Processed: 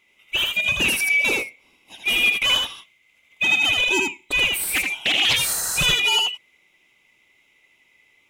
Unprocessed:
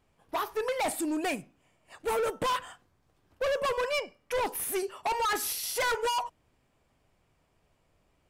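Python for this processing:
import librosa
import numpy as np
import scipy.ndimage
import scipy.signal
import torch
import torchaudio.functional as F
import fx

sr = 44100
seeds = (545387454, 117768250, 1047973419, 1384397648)

y = fx.band_swap(x, sr, width_hz=2000)
y = y + 10.0 ** (-3.0 / 20.0) * np.pad(y, (int(80 * sr / 1000.0), 0))[:len(y)]
y = fx.doppler_dist(y, sr, depth_ms=0.39, at=(4.64, 5.37))
y = y * 10.0 ** (8.0 / 20.0)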